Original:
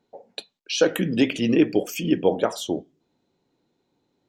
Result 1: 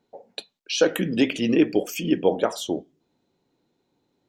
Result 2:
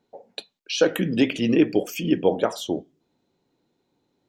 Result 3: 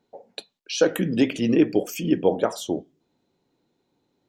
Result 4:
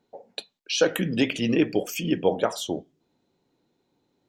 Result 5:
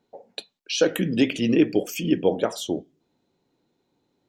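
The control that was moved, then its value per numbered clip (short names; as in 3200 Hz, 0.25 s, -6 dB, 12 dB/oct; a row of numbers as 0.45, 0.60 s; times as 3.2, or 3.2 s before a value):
dynamic EQ, frequency: 110, 8300, 2900, 310, 1000 Hz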